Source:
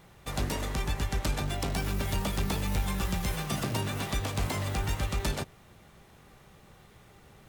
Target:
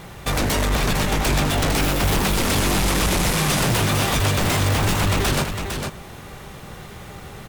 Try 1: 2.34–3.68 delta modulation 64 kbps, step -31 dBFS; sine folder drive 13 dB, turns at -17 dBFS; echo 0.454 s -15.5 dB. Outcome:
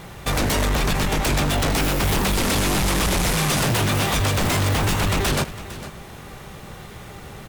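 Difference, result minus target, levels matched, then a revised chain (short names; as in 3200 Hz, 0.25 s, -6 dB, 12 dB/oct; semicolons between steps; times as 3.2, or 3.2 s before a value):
echo-to-direct -9 dB
2.34–3.68 delta modulation 64 kbps, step -31 dBFS; sine folder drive 13 dB, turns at -17 dBFS; echo 0.454 s -6.5 dB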